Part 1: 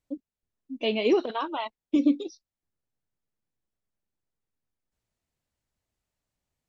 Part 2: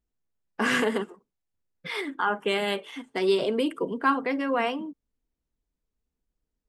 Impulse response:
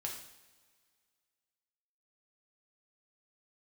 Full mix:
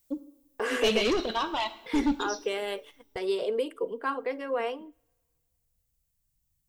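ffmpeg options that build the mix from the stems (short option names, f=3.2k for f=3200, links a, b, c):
-filter_complex "[0:a]aemphasis=mode=production:type=75kf,asoftclip=type=tanh:threshold=-22dB,volume=-0.5dB,afade=t=out:st=2.87:d=0.51:silence=0.298538,asplit=2[a][b];[b]volume=-4.5dB[c];[1:a]highpass=f=460:t=q:w=4.9,agate=range=-17dB:threshold=-36dB:ratio=16:detection=peak,volume=-8.5dB,asplit=2[d][e];[e]volume=-23.5dB[f];[2:a]atrim=start_sample=2205[g];[c][f]amix=inputs=2:normalize=0[h];[h][g]afir=irnorm=-1:irlink=0[i];[a][d][i]amix=inputs=3:normalize=0,crystalizer=i=0.5:c=0,asubboost=boost=11:cutoff=130"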